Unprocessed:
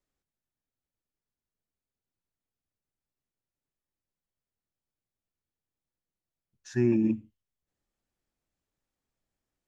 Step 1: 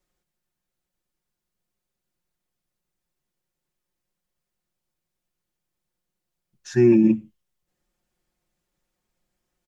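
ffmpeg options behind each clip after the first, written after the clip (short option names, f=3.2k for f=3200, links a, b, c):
-af "aecho=1:1:5.6:0.65,volume=6.5dB"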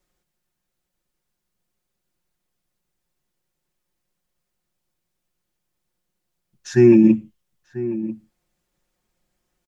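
-filter_complex "[0:a]asplit=2[a][b];[b]adelay=991.3,volume=-14dB,highshelf=f=4k:g=-22.3[c];[a][c]amix=inputs=2:normalize=0,volume=4dB"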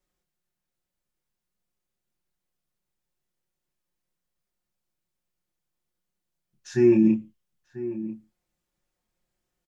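-filter_complex "[0:a]asplit=2[a][b];[b]adelay=28,volume=-5.5dB[c];[a][c]amix=inputs=2:normalize=0,volume=-8dB"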